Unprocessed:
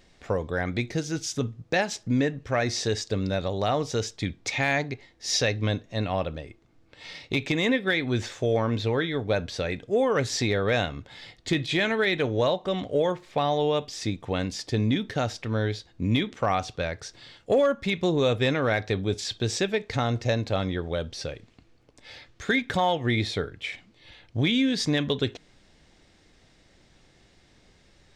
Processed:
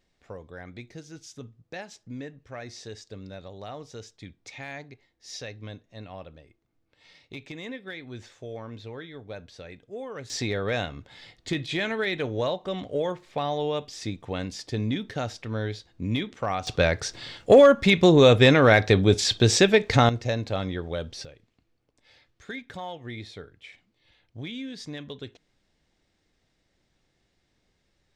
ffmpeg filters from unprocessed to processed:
-af "asetnsamples=n=441:p=0,asendcmd='10.3 volume volume -3.5dB;16.67 volume volume 8dB;20.09 volume volume -2dB;21.25 volume volume -13dB',volume=0.2"

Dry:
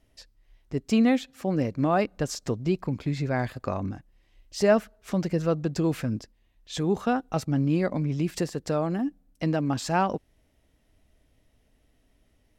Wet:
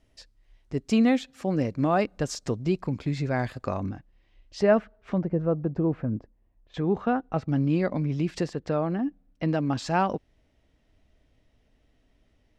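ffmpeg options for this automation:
-af "asetnsamples=n=441:p=0,asendcmd='3.9 lowpass f 4300;4.61 lowpass f 2400;5.18 lowpass f 1000;6.74 lowpass f 2200;7.49 lowpass f 5200;8.53 lowpass f 3100;9.49 lowpass f 5700',lowpass=9400"

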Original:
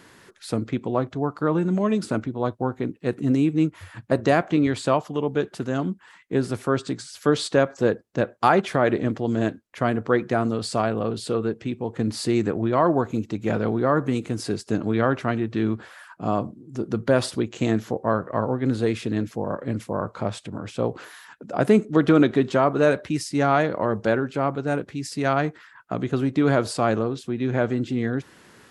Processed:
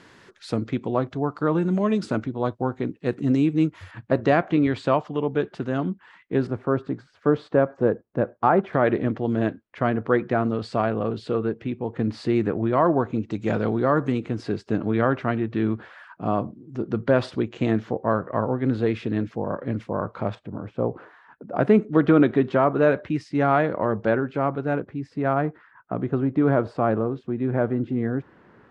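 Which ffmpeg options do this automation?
-af "asetnsamples=n=441:p=0,asendcmd='3.91 lowpass f 3300;6.47 lowpass f 1300;8.73 lowpass f 2800;13.31 lowpass f 6600;14.12 lowpass f 3000;20.35 lowpass f 1200;21.56 lowpass f 2400;24.8 lowpass f 1400',lowpass=5900"

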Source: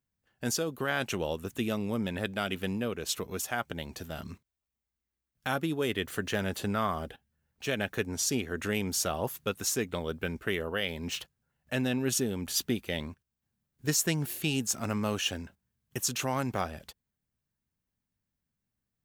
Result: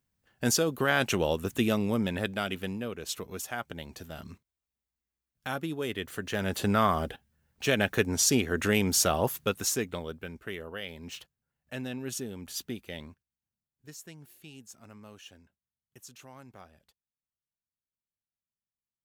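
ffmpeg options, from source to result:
-af "volume=4.73,afade=t=out:st=1.67:d=1.1:silence=0.398107,afade=t=in:st=6.27:d=0.47:silence=0.375837,afade=t=out:st=9.16:d=1.07:silence=0.237137,afade=t=out:st=13.06:d=0.83:silence=0.251189"

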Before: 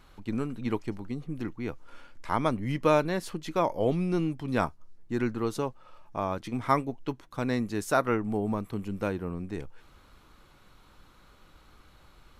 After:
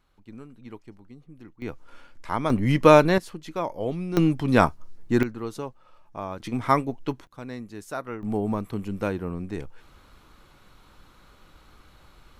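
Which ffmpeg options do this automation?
-af "asetnsamples=n=441:p=0,asendcmd='1.62 volume volume 0.5dB;2.5 volume volume 9dB;3.18 volume volume -2.5dB;4.17 volume volume 9dB;5.23 volume volume -3dB;6.4 volume volume 4dB;7.27 volume volume -8dB;8.23 volume volume 3dB',volume=0.251"

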